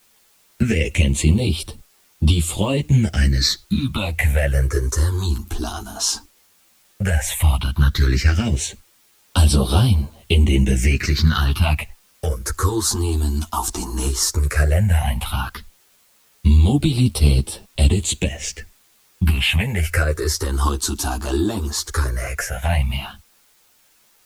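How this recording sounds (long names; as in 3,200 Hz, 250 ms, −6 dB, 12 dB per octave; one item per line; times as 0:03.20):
phaser sweep stages 6, 0.13 Hz, lowest notch 140–1,900 Hz
a quantiser's noise floor 10 bits, dither triangular
a shimmering, thickened sound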